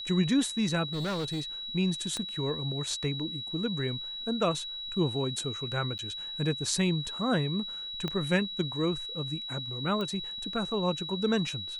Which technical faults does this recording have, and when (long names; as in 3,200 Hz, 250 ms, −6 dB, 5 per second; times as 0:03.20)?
whistle 3,900 Hz −36 dBFS
0:00.93–0:01.41: clipping −28.5 dBFS
0:02.17: click −21 dBFS
0:05.98–0:05.99: drop-out 9.3 ms
0:08.08: click −19 dBFS
0:10.01: click −22 dBFS